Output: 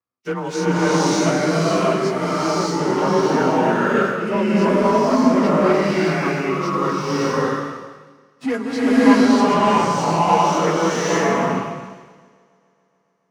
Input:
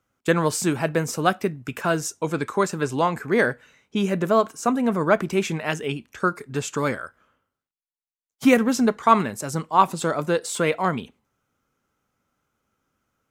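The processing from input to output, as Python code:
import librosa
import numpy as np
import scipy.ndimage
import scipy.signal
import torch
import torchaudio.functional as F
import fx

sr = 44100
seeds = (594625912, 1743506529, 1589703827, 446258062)

p1 = fx.partial_stretch(x, sr, pct=92)
p2 = fx.low_shelf(p1, sr, hz=220.0, db=-5.0)
p3 = p2 + fx.echo_heads(p2, sr, ms=141, heads='second and third', feedback_pct=55, wet_db=-22.5, dry=0)
p4 = fx.leveller(p3, sr, passes=2)
p5 = scipy.signal.sosfilt(scipy.signal.butter(2, 60.0, 'highpass', fs=sr, output='sos'), p4)
p6 = fx.high_shelf(p5, sr, hz=5800.0, db=-7.5)
p7 = fx.rev_bloom(p6, sr, seeds[0], attack_ms=610, drr_db=-10.5)
y = F.gain(torch.from_numpy(p7), -8.5).numpy()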